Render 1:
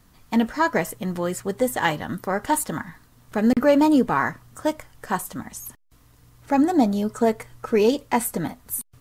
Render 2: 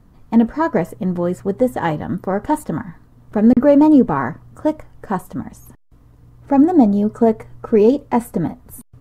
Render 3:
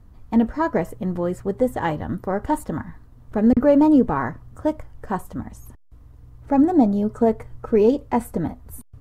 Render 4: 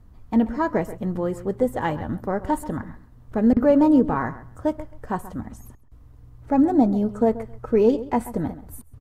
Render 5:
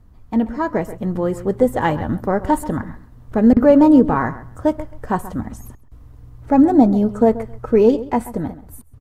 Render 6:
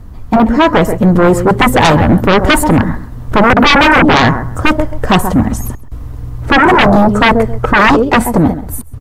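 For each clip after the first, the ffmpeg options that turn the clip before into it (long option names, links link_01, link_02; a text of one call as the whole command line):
ffmpeg -i in.wav -af "tiltshelf=frequency=1400:gain=9.5,volume=-1.5dB" out.wav
ffmpeg -i in.wav -af "lowshelf=frequency=110:width_type=q:width=1.5:gain=6.5,volume=-3.5dB" out.wav
ffmpeg -i in.wav -filter_complex "[0:a]asplit=2[link_01][link_02];[link_02]adelay=133,lowpass=frequency=3400:poles=1,volume=-15dB,asplit=2[link_03][link_04];[link_04]adelay=133,lowpass=frequency=3400:poles=1,volume=0.18[link_05];[link_01][link_03][link_05]amix=inputs=3:normalize=0,volume=-1.5dB" out.wav
ffmpeg -i in.wav -af "dynaudnorm=framelen=130:gausssize=17:maxgain=7dB,volume=1dB" out.wav
ffmpeg -i in.wav -af "aeval=exprs='0.891*sin(PI/2*6.31*val(0)/0.891)':channel_layout=same,volume=-2.5dB" out.wav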